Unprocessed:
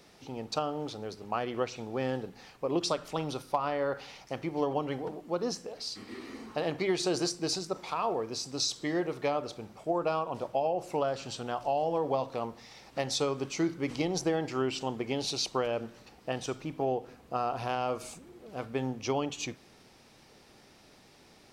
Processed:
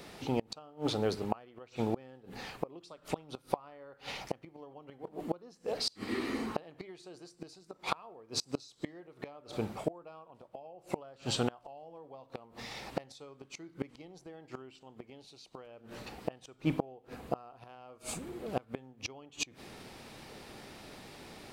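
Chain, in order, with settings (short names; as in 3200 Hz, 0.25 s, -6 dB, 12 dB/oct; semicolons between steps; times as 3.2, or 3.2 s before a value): flipped gate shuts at -26 dBFS, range -29 dB; bell 5700 Hz -6 dB 0.52 oct; gain +8.5 dB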